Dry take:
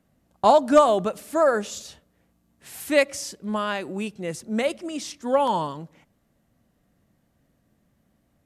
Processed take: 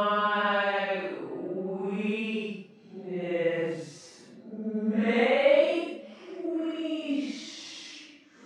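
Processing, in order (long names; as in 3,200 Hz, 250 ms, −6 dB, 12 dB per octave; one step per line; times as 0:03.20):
band-pass filter 220–3,000 Hz
extreme stretch with random phases 5.3×, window 0.10 s, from 0:03.62
level +1 dB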